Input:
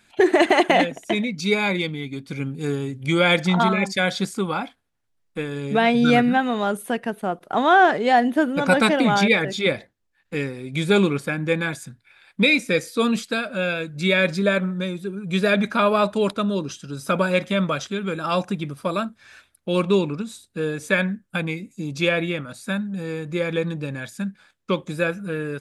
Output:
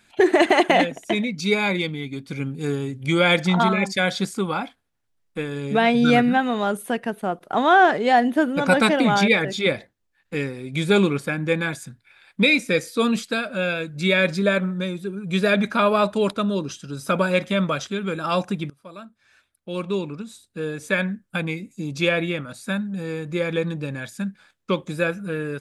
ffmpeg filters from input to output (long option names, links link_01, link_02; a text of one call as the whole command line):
ffmpeg -i in.wav -filter_complex "[0:a]asplit=2[link_01][link_02];[link_01]atrim=end=18.7,asetpts=PTS-STARTPTS,afade=type=out:start_time=18.696:duration=0.004:curve=hsin:silence=0.0841395[link_03];[link_02]atrim=start=18.7,asetpts=PTS-STARTPTS,afade=type=in:duration=2.85:silence=0.0841395[link_04];[link_03][link_04]concat=n=2:v=0:a=1" out.wav